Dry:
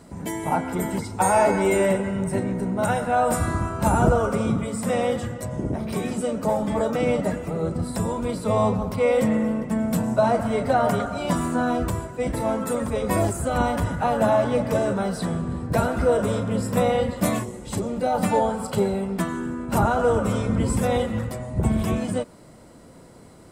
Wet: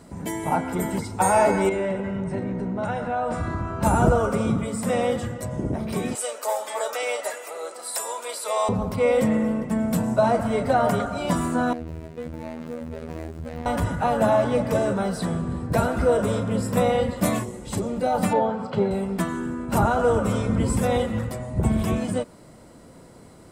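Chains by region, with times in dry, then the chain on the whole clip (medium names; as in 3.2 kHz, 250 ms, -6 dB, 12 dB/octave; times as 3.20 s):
1.69–3.83 s: compression 2:1, threshold -25 dBFS + short-mantissa float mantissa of 8-bit + distance through air 120 m
6.15–8.69 s: high-pass 480 Hz 24 dB/octave + tilt EQ +3 dB/octave
11.73–13.66 s: median filter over 41 samples + robot voice 80.2 Hz + compression 3:1, threshold -29 dBFS
18.33–18.91 s: high-pass 100 Hz 24 dB/octave + distance through air 210 m
whole clip: none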